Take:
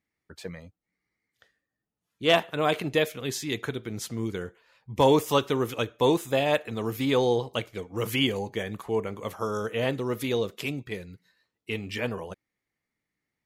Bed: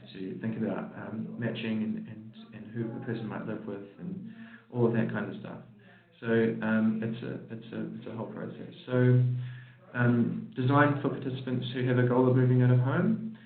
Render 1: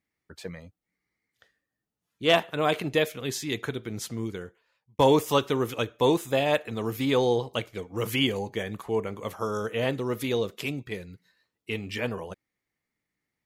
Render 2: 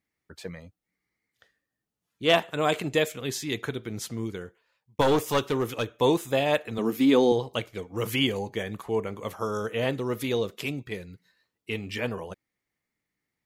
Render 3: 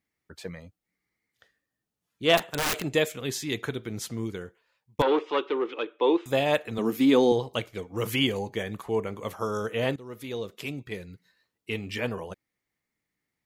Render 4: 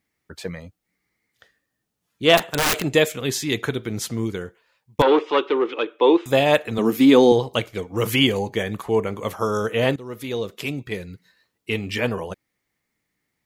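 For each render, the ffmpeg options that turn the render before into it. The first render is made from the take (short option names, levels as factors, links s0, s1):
-filter_complex "[0:a]asplit=2[s0][s1];[s0]atrim=end=4.99,asetpts=PTS-STARTPTS,afade=t=out:st=4.09:d=0.9[s2];[s1]atrim=start=4.99,asetpts=PTS-STARTPTS,afade=t=in:d=0.004:c=hsin[s3];[s2][s3]concat=n=2:v=0:a=1"
-filter_complex "[0:a]asettb=1/sr,asplit=3[s0][s1][s2];[s0]atrim=end=2.424[s3];[s1]atrim=start=2.42:end=3.2,asetpts=PTS-STARTPTS,afade=t=in:d=0.004:c=qsin,afade=t=out:st=0.776:d=0.004:c=qsin,equalizer=f=7500:w=4.9:g=11[s4];[s2]atrim=start=3.196[s5];[s3][s4]acrossfade=d=0.004:c1=hsin:c2=qsin[s6];[s6][s5]acrossfade=d=0.004:c1=qsin:c2=hsin,asettb=1/sr,asplit=3[s7][s8][s9];[s7]atrim=end=5.014[s10];[s8]atrim=start=5.01:end=5.93,asetpts=PTS-STARTPTS,afade=t=in:d=0.004:c=qsin,afade=t=out:st=0.916:d=0.004:c=qsin,aeval=exprs='clip(val(0),-1,0.0891)':c=same[s11];[s9]atrim=start=5.926[s12];[s10][s11]acrossfade=d=0.004:c1=hsin:c2=qsin[s13];[s13][s12]acrossfade=d=0.004:c1=qsin:c2=hsin,asettb=1/sr,asplit=3[s14][s15][s16];[s14]atrim=end=6.784[s17];[s15]atrim=start=6.78:end=7.32,asetpts=PTS-STARTPTS,afade=t=in:d=0.004:c=qsin,afade=t=out:st=0.536:d=0.004:c=qsin,highpass=f=240:t=q:w=2.4[s18];[s16]atrim=start=7.316[s19];[s17][s18]acrossfade=d=0.004:c1=hsin:c2=qsin[s20];[s20][s19]acrossfade=d=0.004:c1=qsin:c2=hsin"
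-filter_complex "[0:a]asettb=1/sr,asplit=3[s0][s1][s2];[s0]atrim=end=2.374[s3];[s1]atrim=start=2.37:end=2.95,asetpts=PTS-STARTPTS,afade=t=in:d=0.004:c=qsin,afade=t=out:st=0.576:d=0.004:c=qsin,aeval=exprs='(mod(11.9*val(0)+1,2)-1)/11.9':c=same[s4];[s2]atrim=start=2.946[s5];[s3][s4]acrossfade=d=0.004:c1=hsin:c2=qsin[s6];[s6][s5]acrossfade=d=0.004:c1=qsin:c2=hsin,asettb=1/sr,asplit=3[s7][s8][s9];[s7]atrim=end=5.024[s10];[s8]atrim=start=5.02:end=6.26,asetpts=PTS-STARTPTS,afade=t=in:d=0.004:c=qsin,afade=t=out:st=1.236:d=0.004:c=qsin,highpass=f=320:w=0.5412,highpass=f=320:w=1.3066,equalizer=f=340:t=q:w=4:g=5,equalizer=f=660:t=q:w=4:g=-7,equalizer=f=1700:t=q:w=4:g=-4,lowpass=f=3300:w=0.5412,lowpass=f=3300:w=1.3066[s11];[s9]atrim=start=6.256[s12];[s10][s11]acrossfade=d=0.004:c1=hsin:c2=qsin[s13];[s13][s12]acrossfade=d=0.004:c1=qsin:c2=hsin,asplit=2[s14][s15];[s14]atrim=end=9.96,asetpts=PTS-STARTPTS,afade=t=out:st=9.956:d=0.004:c=hsin:silence=0.158489[s16];[s15]atrim=start=9.96,asetpts=PTS-STARTPTS,afade=t=in:d=1.14:silence=0.158489[s17];[s16][s17]concat=n=2:v=0:a=1"
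-af "volume=2.24,alimiter=limit=0.708:level=0:latency=1"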